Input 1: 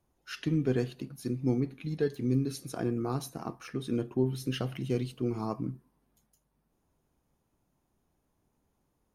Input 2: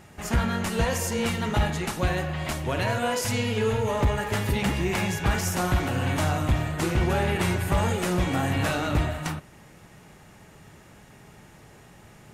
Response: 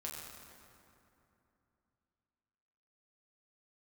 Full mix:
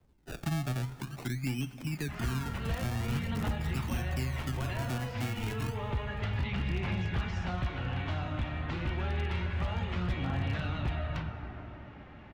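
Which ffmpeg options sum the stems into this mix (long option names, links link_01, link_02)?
-filter_complex "[0:a]aecho=1:1:0.9:0.7,acrusher=samples=30:mix=1:aa=0.000001:lfo=1:lforange=30:lforate=0.44,volume=2.5dB,asplit=2[link_01][link_02];[link_02]volume=-16dB[link_03];[1:a]lowpass=frequency=3300:width=0.5412,lowpass=frequency=3300:width=1.3066,adelay=1900,volume=-4.5dB,asplit=2[link_04][link_05];[link_05]volume=-3.5dB[link_06];[2:a]atrim=start_sample=2205[link_07];[link_03][link_06]amix=inputs=2:normalize=0[link_08];[link_08][link_07]afir=irnorm=-1:irlink=0[link_09];[link_01][link_04][link_09]amix=inputs=3:normalize=0,acrossover=split=190|730|3700[link_10][link_11][link_12][link_13];[link_10]acompressor=threshold=-32dB:ratio=4[link_14];[link_11]acompressor=threshold=-47dB:ratio=4[link_15];[link_12]acompressor=threshold=-43dB:ratio=4[link_16];[link_13]acompressor=threshold=-47dB:ratio=4[link_17];[link_14][link_15][link_16][link_17]amix=inputs=4:normalize=0,aphaser=in_gain=1:out_gain=1:delay=3.9:decay=0.26:speed=0.29:type=triangular,aeval=exprs='0.0596*(abs(mod(val(0)/0.0596+3,4)-2)-1)':channel_layout=same"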